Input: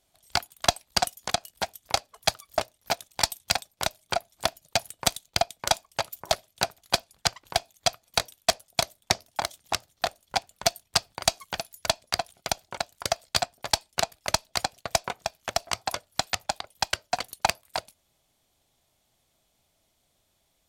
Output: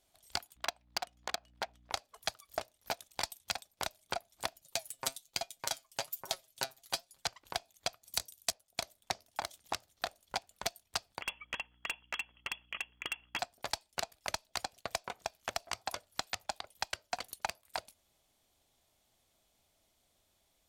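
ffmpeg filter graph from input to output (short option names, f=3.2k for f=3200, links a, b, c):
-filter_complex "[0:a]asettb=1/sr,asplit=3[a][b][c];[a]atrim=end=0.564[d];[b]atrim=start=0.56:end=1.92,asetpts=PTS-STARTPTS,afade=t=in:d=0.004:c=qsin,afade=t=out:st=1.356:d=0.004:c=qsin,highpass=f=500:p=1,aeval=exprs='val(0)+0.00112*(sin(2*PI*60*n/s)+sin(2*PI*2*60*n/s)/2+sin(2*PI*3*60*n/s)/3+sin(2*PI*4*60*n/s)/4+sin(2*PI*5*60*n/s)/5)':c=same,adynamicsmooth=sensitivity=2:basefreq=2.2k[e];[c]atrim=start=1.916[f];[d][e]acrossfade=d=0.004:c1=hsin:c2=qsin[g];[g][f]acrossfade=d=0.004:c1=qsin:c2=hsin,asettb=1/sr,asplit=3[h][i][j];[h]atrim=end=4.634[k];[i]atrim=start=4.63:end=7.26,asetpts=PTS-STARTPTS,afade=t=in:d=0.004:c=qsin,afade=t=out:st=2.626:d=0.004:c=qsin,highshelf=f=4.1k:g=8.5,aecho=1:1:7.5:0.6,atrim=end_sample=115983,flanger=delay=5.3:depth=2.3:regen=72:speed=1.2:shape=sinusoidal[l];[j]atrim=start=7.256[m];[k][l]acrossfade=d=0.004:c1=hsin:c2=qsin[n];[n][m]acrossfade=d=0.004:c1=qsin:c2=hsin,asettb=1/sr,asplit=3[o][p][q];[o]atrim=end=8.034[r];[p]atrim=start=8.03:end=8.52,asetpts=PTS-STARTPTS,afade=t=in:d=0.004:c=qsin,afade=t=out:st=0.486:d=0.004:c=qsin,highpass=40,bass=f=250:g=8,treble=f=4k:g=13[s];[q]atrim=start=8.516[t];[r][s]acrossfade=d=0.004:c1=hsin:c2=qsin[u];[u][t]acrossfade=d=0.004:c1=qsin:c2=hsin,asettb=1/sr,asplit=3[v][w][x];[v]atrim=end=11.214[y];[w]atrim=start=11.21:end=13.39,asetpts=PTS-STARTPTS,afade=t=in:d=0.004:c=qsin,afade=t=out:st=2.176:d=0.004:c=qsin,lowpass=f=2.9k:t=q:w=0.5098,lowpass=f=2.9k:t=q:w=0.6013,lowpass=f=2.9k:t=q:w=0.9,lowpass=f=2.9k:t=q:w=2.563,afreqshift=-3400,aeval=exprs='val(0)+0.000631*(sin(2*PI*60*n/s)+sin(2*PI*2*60*n/s)/2+sin(2*PI*3*60*n/s)/3+sin(2*PI*4*60*n/s)/4+sin(2*PI*5*60*n/s)/5)':c=same,volume=24.5dB,asoftclip=hard,volume=-24.5dB[z];[x]atrim=start=13.386[aa];[y][z]acrossfade=d=0.004:c1=hsin:c2=qsin[ab];[ab][aa]acrossfade=d=0.004:c1=qsin:c2=hsin,acompressor=threshold=-30dB:ratio=6,equalizer=f=140:w=2.2:g=-5,volume=-3dB"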